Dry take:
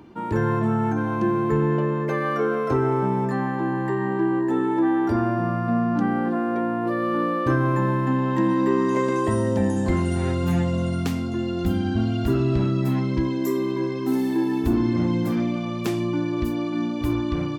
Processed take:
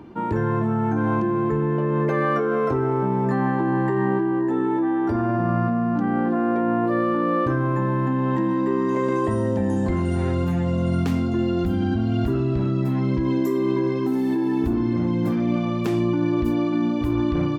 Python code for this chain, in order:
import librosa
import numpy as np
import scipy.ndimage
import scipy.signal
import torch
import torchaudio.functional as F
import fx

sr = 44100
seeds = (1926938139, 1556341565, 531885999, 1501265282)

p1 = fx.high_shelf(x, sr, hz=2900.0, db=-8.5)
p2 = fx.over_compress(p1, sr, threshold_db=-25.0, ratio=-0.5)
p3 = p1 + F.gain(torch.from_numpy(p2), 0.5).numpy()
y = F.gain(torch.from_numpy(p3), -3.5).numpy()